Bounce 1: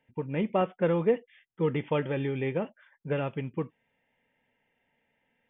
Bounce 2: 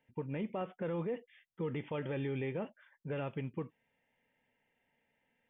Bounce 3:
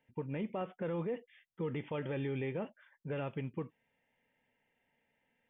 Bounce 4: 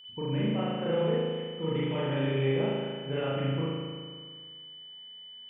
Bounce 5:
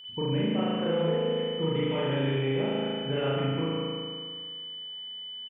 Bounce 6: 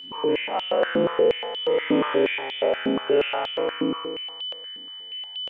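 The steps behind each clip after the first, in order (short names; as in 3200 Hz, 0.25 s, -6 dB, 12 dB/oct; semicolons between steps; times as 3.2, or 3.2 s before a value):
limiter -25.5 dBFS, peak gain reduction 11 dB; gain -4 dB
nothing audible
whine 3000 Hz -49 dBFS; spring tank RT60 1.8 s, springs 37 ms, chirp 80 ms, DRR -8 dB
compressor 2.5:1, threshold -30 dBFS, peak gain reduction 5.5 dB; echo 0.144 s -8 dB; gain +4.5 dB
spectral dilation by 0.12 s; stepped high-pass 8.4 Hz 270–3300 Hz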